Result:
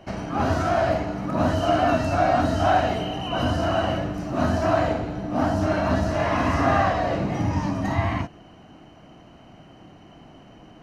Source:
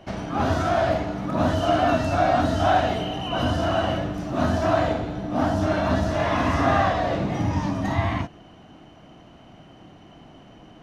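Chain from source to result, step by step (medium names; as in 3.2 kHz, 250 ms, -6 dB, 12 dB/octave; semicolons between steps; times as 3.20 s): band-stop 3.5 kHz, Q 6.7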